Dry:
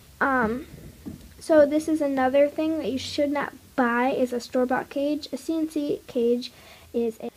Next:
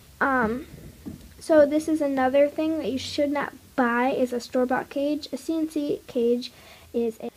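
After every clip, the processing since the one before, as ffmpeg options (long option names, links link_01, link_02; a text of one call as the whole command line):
ffmpeg -i in.wav -af anull out.wav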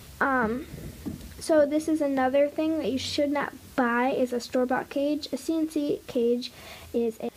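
ffmpeg -i in.wav -af "acompressor=threshold=-37dB:ratio=1.5,volume=4.5dB" out.wav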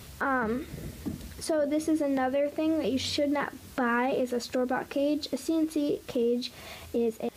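ffmpeg -i in.wav -af "alimiter=limit=-19.5dB:level=0:latency=1:release=45" out.wav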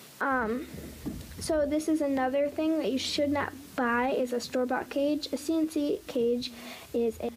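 ffmpeg -i in.wav -filter_complex "[0:a]acrossover=split=160[link_01][link_02];[link_01]adelay=310[link_03];[link_03][link_02]amix=inputs=2:normalize=0" out.wav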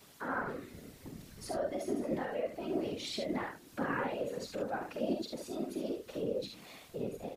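ffmpeg -i in.wav -af "flanger=delay=4.9:depth=3:regen=62:speed=1.7:shape=triangular,aecho=1:1:47|72:0.531|0.473,afftfilt=real='hypot(re,im)*cos(2*PI*random(0))':imag='hypot(re,im)*sin(2*PI*random(1))':win_size=512:overlap=0.75" out.wav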